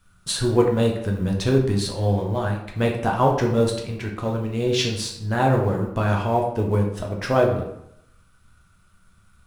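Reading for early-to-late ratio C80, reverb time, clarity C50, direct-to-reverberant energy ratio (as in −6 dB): 8.5 dB, 0.75 s, 5.5 dB, −0.5 dB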